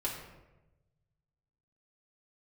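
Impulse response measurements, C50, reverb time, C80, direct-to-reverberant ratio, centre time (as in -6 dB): 4.5 dB, 1.0 s, 6.5 dB, -5.5 dB, 40 ms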